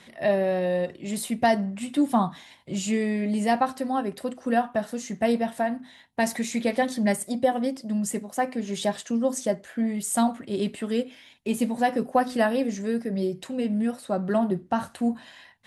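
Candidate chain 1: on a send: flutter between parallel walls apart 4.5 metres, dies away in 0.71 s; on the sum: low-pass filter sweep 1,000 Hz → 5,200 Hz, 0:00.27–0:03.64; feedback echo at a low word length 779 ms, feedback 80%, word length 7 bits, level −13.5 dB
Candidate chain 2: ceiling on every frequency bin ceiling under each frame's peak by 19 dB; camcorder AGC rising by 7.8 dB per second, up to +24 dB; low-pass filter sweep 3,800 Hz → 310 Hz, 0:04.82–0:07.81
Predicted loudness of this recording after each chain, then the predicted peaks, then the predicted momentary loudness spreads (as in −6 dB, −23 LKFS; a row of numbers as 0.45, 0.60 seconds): −21.5, −24.0 LKFS; −3.5, −4.0 dBFS; 7, 8 LU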